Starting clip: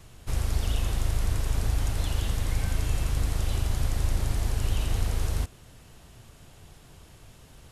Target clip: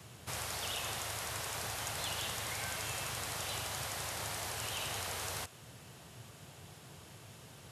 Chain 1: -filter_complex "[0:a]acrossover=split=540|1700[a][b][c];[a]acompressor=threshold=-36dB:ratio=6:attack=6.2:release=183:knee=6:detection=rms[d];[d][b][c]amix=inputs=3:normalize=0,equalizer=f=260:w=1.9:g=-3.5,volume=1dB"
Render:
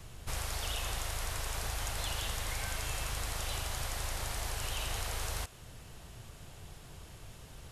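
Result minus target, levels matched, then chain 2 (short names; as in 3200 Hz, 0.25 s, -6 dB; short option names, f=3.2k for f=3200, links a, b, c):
125 Hz band +4.5 dB
-filter_complex "[0:a]acrossover=split=540|1700[a][b][c];[a]acompressor=threshold=-36dB:ratio=6:attack=6.2:release=183:knee=6:detection=rms,highpass=f=100:w=0.5412,highpass=f=100:w=1.3066[d];[d][b][c]amix=inputs=3:normalize=0,equalizer=f=260:w=1.9:g=-3.5,volume=1dB"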